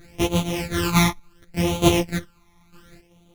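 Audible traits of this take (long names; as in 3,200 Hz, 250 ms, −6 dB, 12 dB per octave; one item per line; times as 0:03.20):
a buzz of ramps at a fixed pitch in blocks of 256 samples
phaser sweep stages 12, 0.69 Hz, lowest notch 490–1,700 Hz
chopped level 1.1 Hz, depth 65%, duty 30%
a shimmering, thickened sound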